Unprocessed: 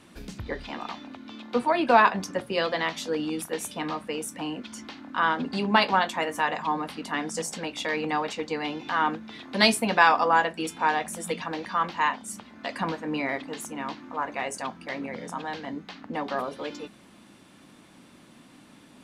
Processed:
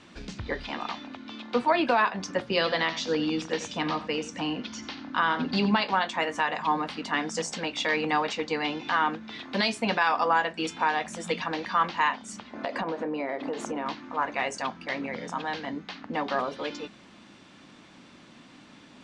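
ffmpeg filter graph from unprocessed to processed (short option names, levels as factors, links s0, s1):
-filter_complex "[0:a]asettb=1/sr,asplit=3[s0][s1][s2];[s0]atrim=end=2.464[s3];[s1]atrim=start=2.46:end=5.81,asetpts=PTS-STARTPTS,afade=t=in:d=0.004:c=qsin,afade=t=out:st=3.346:d=0.004:c=qsin,lowpass=f=6300:w=0.5412,lowpass=f=6300:w=1.3066,bass=f=250:g=4,treble=f=4000:g=4,aecho=1:1:89:0.2,atrim=end_sample=147735[s4];[s2]atrim=start=5.806[s5];[s3][s4]acrossfade=d=0.004:c1=hsin:c2=qsin[s6];[s6][s5]acrossfade=d=0.004:c1=qsin:c2=hsin,asettb=1/sr,asplit=3[s7][s8][s9];[s7]atrim=end=12.534[s10];[s8]atrim=start=12.53:end=13.86,asetpts=PTS-STARTPTS,afade=t=in:d=0.004:c=qsin,afade=t=out:st=1.326:d=0.004:c=qsin,highpass=42,equalizer=f=510:t=o:w=2.2:g=15,acompressor=threshold=0.0398:ratio=10:attack=3.2:release=140:knee=1:detection=peak[s11];[s9]atrim=start=13.856[s12];[s10][s11]acrossfade=d=0.004:c1=hsin:c2=qsin[s13];[s13][s12]acrossfade=d=0.004:c1=qsin:c2=hsin,lowpass=f=7000:w=0.5412,lowpass=f=7000:w=1.3066,equalizer=f=3000:w=0.32:g=3.5,alimiter=limit=0.237:level=0:latency=1:release=272"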